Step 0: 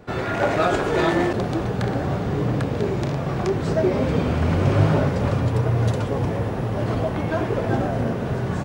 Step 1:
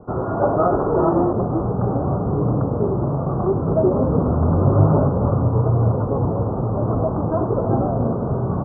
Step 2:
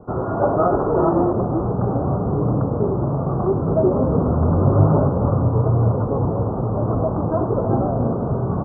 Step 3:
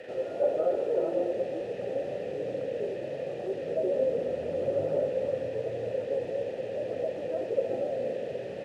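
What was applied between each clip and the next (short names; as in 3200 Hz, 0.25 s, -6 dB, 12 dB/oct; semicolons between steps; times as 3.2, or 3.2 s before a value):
steep low-pass 1300 Hz 72 dB/oct; gain +3 dB
tape echo 0.314 s, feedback 57%, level -16 dB, low-pass 1300 Hz
delta modulation 64 kbps, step -27 dBFS; vowel filter e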